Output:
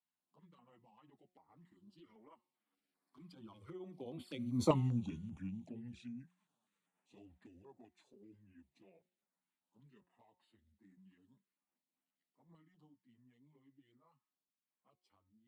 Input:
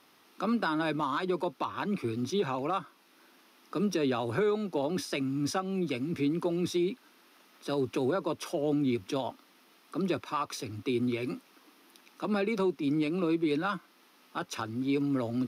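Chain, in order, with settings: pitch bend over the whole clip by -7.5 st ending unshifted; Doppler pass-by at 4.73 s, 54 m/s, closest 3.7 m; touch-sensitive flanger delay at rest 11.7 ms, full sweep at -50 dBFS; de-hum 181 Hz, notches 12; step-sequenced notch 5.1 Hz 510–5900 Hz; trim +6.5 dB

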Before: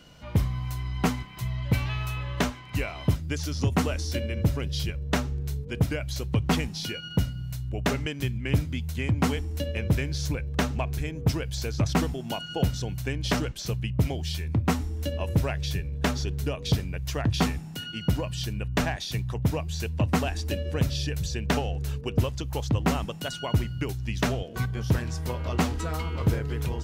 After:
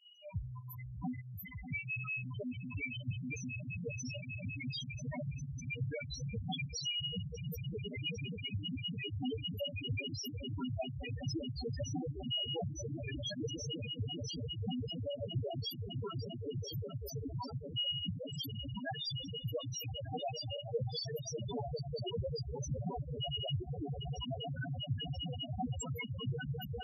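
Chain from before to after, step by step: RIAA curve recording; 3.39–4.61 s: level held to a coarse grid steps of 15 dB; 16.05–17.52 s: static phaser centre 630 Hz, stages 6; echo with a slow build-up 199 ms, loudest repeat 8, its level -8 dB; volume shaper 99 bpm, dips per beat 1, -18 dB, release 89 ms; loudest bins only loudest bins 2

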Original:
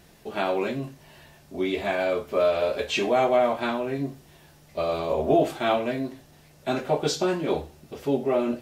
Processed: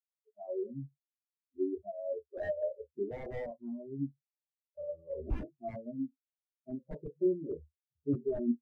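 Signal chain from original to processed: four-pole ladder low-pass 1.2 kHz, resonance 25%; spectral noise reduction 21 dB; integer overflow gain 21 dB; bass shelf 340 Hz +12 dB; spectral contrast expander 2.5:1; trim -8 dB

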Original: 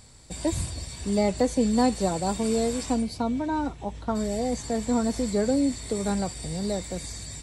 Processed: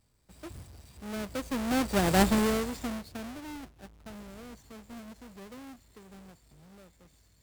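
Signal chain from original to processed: square wave that keeps the level; Doppler pass-by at 2.20 s, 13 m/s, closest 1.8 m

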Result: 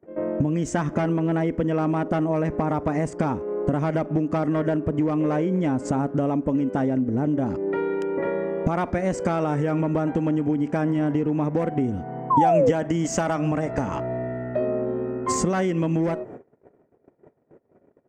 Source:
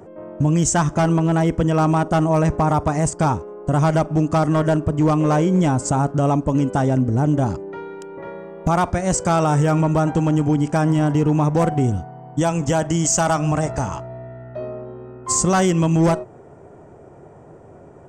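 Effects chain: gate -39 dBFS, range -37 dB; ten-band graphic EQ 250 Hz +11 dB, 500 Hz +8 dB, 2 kHz +10 dB, 8 kHz -8 dB; compression 10:1, threshold -20 dBFS, peak gain reduction 16.5 dB; painted sound fall, 12.30–12.71 s, 450–1100 Hz -18 dBFS

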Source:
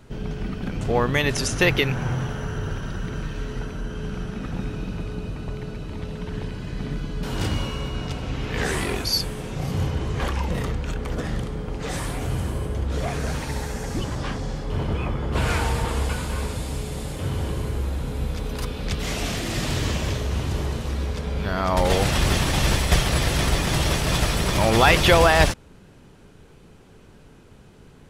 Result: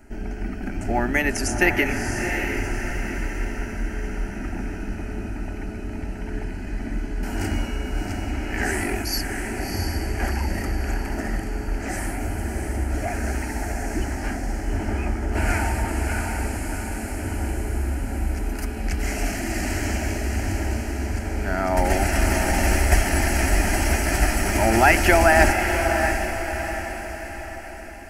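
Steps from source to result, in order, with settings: static phaser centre 730 Hz, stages 8; echo that smears into a reverb 683 ms, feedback 49%, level -5.5 dB; trim +3 dB

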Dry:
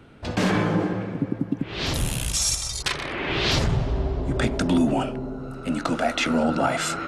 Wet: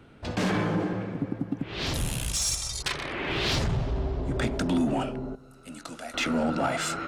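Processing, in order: 5.35–6.14 s: pre-emphasis filter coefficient 0.8; in parallel at -4 dB: hard clipper -22 dBFS, distortion -10 dB; on the sum: trim -7.5 dB

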